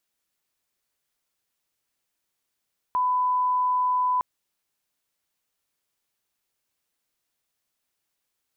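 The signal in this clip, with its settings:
line-up tone −20 dBFS 1.26 s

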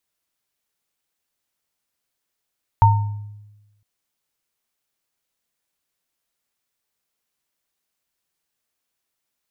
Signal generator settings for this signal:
inharmonic partials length 1.01 s, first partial 104 Hz, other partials 913 Hz, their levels 0.5 dB, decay 1.13 s, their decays 0.49 s, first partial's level −9.5 dB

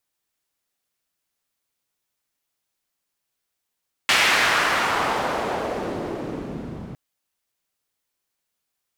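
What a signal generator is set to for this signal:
filter sweep on noise pink, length 2.86 s bandpass, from 2,500 Hz, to 170 Hz, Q 1.2, exponential, gain ramp −18 dB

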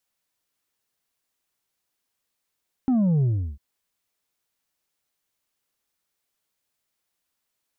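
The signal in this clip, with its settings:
bass drop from 270 Hz, over 0.70 s, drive 4 dB, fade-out 0.35 s, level −18 dB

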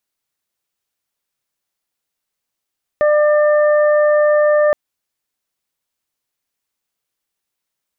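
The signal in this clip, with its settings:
steady harmonic partials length 1.72 s, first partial 598 Hz, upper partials −13/−13 dB, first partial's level −10 dB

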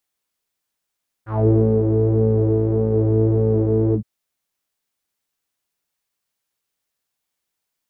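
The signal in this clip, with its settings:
subtractive patch with pulse-width modulation A2, filter lowpass, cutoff 140 Hz, Q 4.7, filter envelope 3.5 octaves, filter decay 0.19 s, filter sustain 45%, attack 213 ms, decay 0.35 s, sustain −3.5 dB, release 0.09 s, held 2.68 s, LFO 1.7 Hz, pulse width 46%, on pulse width 14%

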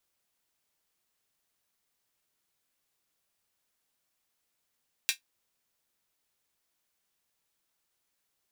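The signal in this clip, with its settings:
closed synth hi-hat, high-pass 2,400 Hz, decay 0.12 s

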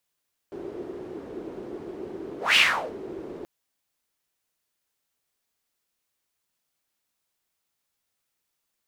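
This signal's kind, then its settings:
pass-by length 2.93 s, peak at 0:02.04, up 0.18 s, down 0.41 s, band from 370 Hz, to 2,800 Hz, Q 4.7, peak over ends 20 dB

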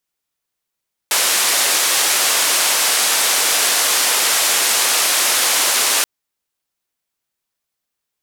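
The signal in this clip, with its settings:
band-limited noise 460–11,000 Hz, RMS −16 dBFS 4.93 s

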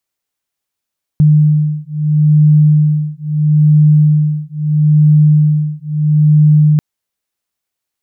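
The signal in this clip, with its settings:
two tones that beat 151 Hz, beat 0.76 Hz, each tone −10 dBFS 5.59 s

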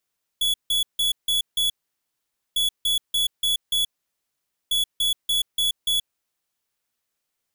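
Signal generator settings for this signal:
beeps in groups square 3,390 Hz, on 0.13 s, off 0.16 s, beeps 5, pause 0.86 s, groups 3, −21.5 dBFS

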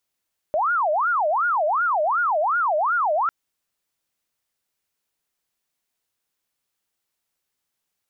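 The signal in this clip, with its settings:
siren wail 598–1,440 Hz 2.7 per second sine −18 dBFS 2.75 s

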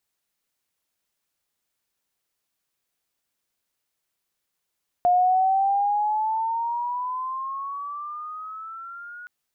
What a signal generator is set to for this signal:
pitch glide with a swell sine, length 4.22 s, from 709 Hz, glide +12.5 semitones, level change −22 dB, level −15 dB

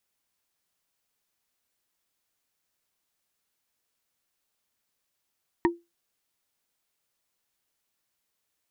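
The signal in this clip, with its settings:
struck wood, lowest mode 342 Hz, modes 3, decay 0.22 s, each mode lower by 2 dB, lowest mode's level −16 dB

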